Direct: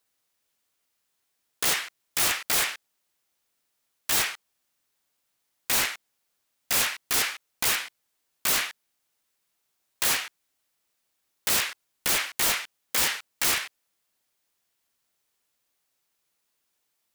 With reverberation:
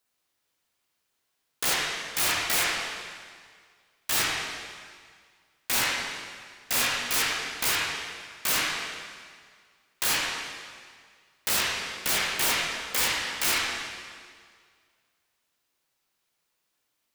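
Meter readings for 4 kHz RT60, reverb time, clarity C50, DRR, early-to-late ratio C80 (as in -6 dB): 1.7 s, 1.9 s, 0.5 dB, -2.5 dB, 2.0 dB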